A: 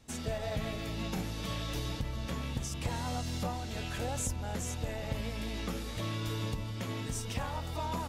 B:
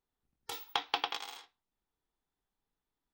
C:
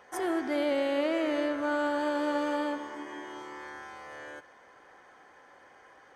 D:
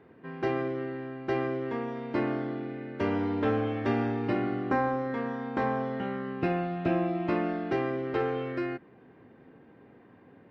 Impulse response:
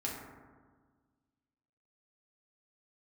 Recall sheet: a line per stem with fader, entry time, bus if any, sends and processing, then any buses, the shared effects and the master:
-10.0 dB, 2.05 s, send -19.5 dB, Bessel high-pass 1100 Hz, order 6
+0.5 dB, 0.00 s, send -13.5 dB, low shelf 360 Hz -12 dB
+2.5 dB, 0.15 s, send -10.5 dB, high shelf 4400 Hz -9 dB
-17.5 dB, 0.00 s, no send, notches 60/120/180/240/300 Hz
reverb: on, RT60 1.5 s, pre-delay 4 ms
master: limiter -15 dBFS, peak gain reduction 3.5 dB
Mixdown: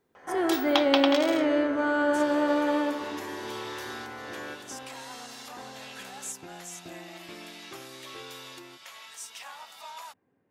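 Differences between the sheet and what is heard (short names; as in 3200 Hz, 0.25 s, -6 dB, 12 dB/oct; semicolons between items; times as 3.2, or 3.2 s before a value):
stem A -10.0 dB -> -1.0 dB; stem B +0.5 dB -> +7.0 dB; master: missing limiter -15 dBFS, peak gain reduction 3.5 dB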